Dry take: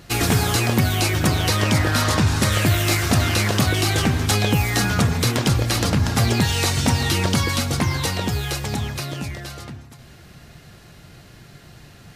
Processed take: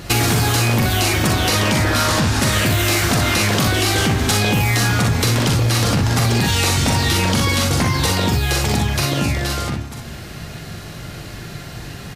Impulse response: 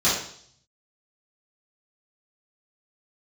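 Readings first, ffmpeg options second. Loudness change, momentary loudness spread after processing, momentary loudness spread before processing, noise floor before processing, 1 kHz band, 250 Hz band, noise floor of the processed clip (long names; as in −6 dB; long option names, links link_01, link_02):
+3.0 dB, 16 LU, 8 LU, −46 dBFS, +4.0 dB, +2.5 dB, −33 dBFS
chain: -af "aecho=1:1:43|61:0.596|0.596,apsyclip=13dB,acompressor=threshold=-12dB:ratio=6,volume=-2.5dB"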